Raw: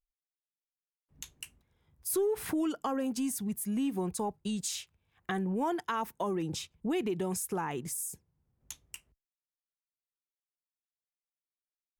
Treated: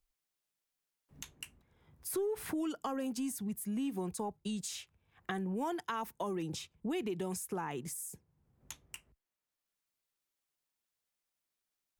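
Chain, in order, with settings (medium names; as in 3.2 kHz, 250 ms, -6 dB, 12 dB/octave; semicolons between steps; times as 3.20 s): three bands compressed up and down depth 40%; trim -4.5 dB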